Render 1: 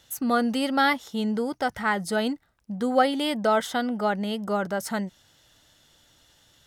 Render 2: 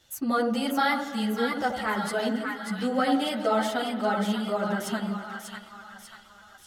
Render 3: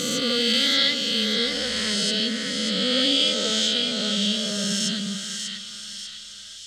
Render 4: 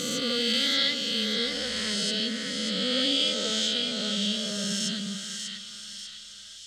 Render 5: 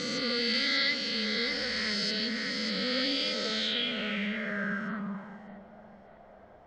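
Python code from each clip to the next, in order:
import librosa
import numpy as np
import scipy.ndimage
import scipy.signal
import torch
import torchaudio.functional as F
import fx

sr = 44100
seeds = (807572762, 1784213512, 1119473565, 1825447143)

y1 = fx.echo_split(x, sr, split_hz=1000.0, low_ms=82, high_ms=592, feedback_pct=52, wet_db=-5.0)
y1 = fx.rev_spring(y1, sr, rt60_s=3.4, pass_ms=(46,), chirp_ms=35, drr_db=12.5)
y1 = fx.chorus_voices(y1, sr, voices=6, hz=0.78, base_ms=11, depth_ms=3.5, mix_pct=55)
y2 = fx.spec_swells(y1, sr, rise_s=2.93)
y2 = fx.curve_eq(y2, sr, hz=(180.0, 360.0, 520.0, 800.0, 3600.0, 7600.0, 11000.0), db=(0, -10, -1, -27, 13, 8, -12))
y2 = fx.echo_wet_highpass(y2, sr, ms=481, feedback_pct=76, hz=2300.0, wet_db=-15)
y3 = fx.dmg_crackle(y2, sr, seeds[0], per_s=20.0, level_db=-48.0)
y3 = y3 * 10.0 ** (-4.5 / 20.0)
y4 = y3 + 0.5 * 10.0 ** (-34.5 / 20.0) * np.sign(y3)
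y4 = fx.high_shelf_res(y4, sr, hz=2600.0, db=-6.0, q=3.0)
y4 = fx.filter_sweep_lowpass(y4, sr, from_hz=4700.0, to_hz=690.0, start_s=3.44, end_s=5.59, q=4.1)
y4 = y4 * 10.0 ** (-4.5 / 20.0)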